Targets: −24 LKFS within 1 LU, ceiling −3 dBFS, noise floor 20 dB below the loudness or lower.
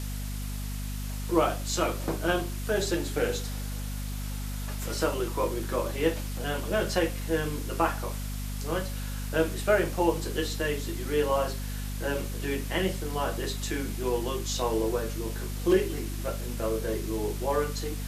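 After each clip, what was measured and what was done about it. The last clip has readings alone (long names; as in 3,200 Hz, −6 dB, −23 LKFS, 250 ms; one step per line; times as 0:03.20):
mains hum 50 Hz; hum harmonics up to 250 Hz; level of the hum −31 dBFS; background noise floor −34 dBFS; target noise floor −50 dBFS; integrated loudness −30.0 LKFS; sample peak −9.5 dBFS; target loudness −24.0 LKFS
→ mains-hum notches 50/100/150/200/250 Hz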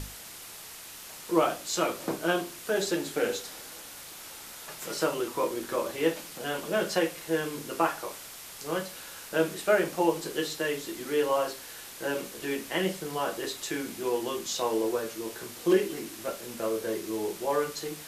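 mains hum none found; background noise floor −45 dBFS; target noise floor −51 dBFS
→ broadband denoise 6 dB, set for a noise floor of −45 dBFS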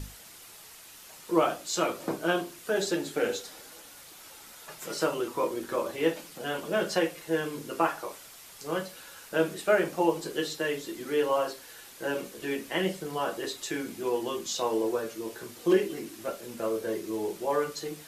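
background noise floor −50 dBFS; target noise floor −51 dBFS
→ broadband denoise 6 dB, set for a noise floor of −50 dBFS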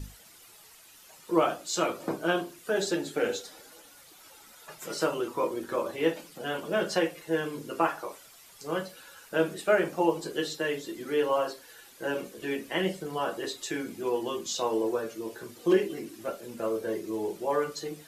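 background noise floor −54 dBFS; integrated loudness −30.5 LKFS; sample peak −10.5 dBFS; target loudness −24.0 LKFS
→ level +6.5 dB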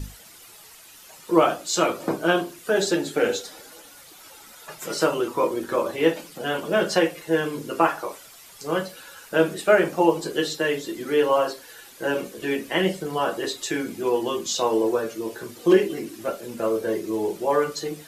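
integrated loudness −24.0 LKFS; sample peak −4.0 dBFS; background noise floor −47 dBFS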